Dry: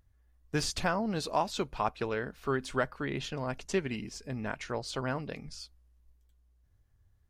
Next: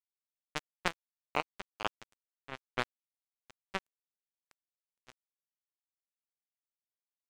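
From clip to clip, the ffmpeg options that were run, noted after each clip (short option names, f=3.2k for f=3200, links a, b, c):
-af "afwtdn=0.00794,acrusher=bits=2:mix=0:aa=0.5,equalizer=f=4.5k:w=1.5:g=-5,volume=6dB"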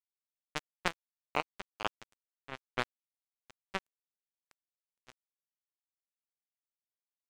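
-af anull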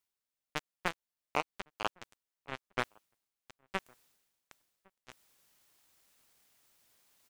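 -filter_complex "[0:a]areverse,acompressor=mode=upward:threshold=-52dB:ratio=2.5,areverse,asoftclip=type=tanh:threshold=-16.5dB,asplit=2[a][b];[b]adelay=1108,volume=-28dB,highshelf=f=4k:g=-24.9[c];[a][c]amix=inputs=2:normalize=0,volume=3dB"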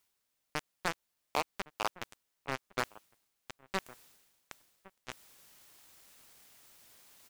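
-af "volume=28.5dB,asoftclip=hard,volume=-28.5dB,volume=9.5dB"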